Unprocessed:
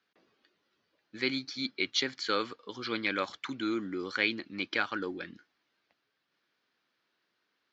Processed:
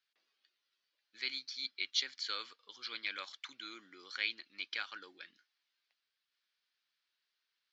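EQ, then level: band-pass filter 4.6 kHz, Q 0.85; -2.5 dB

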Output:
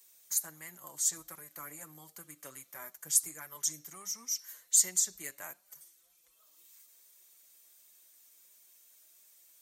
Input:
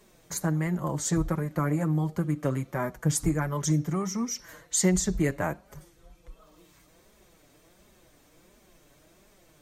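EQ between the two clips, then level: differentiator; treble shelf 7.6 kHz +6 dB; 0.0 dB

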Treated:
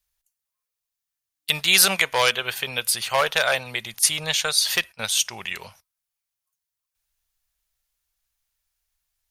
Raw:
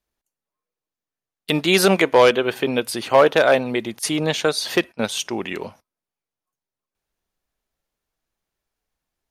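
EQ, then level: amplifier tone stack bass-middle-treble 10-0-10; bass shelf 330 Hz +3.5 dB; treble shelf 7.7 kHz +6.5 dB; +4.5 dB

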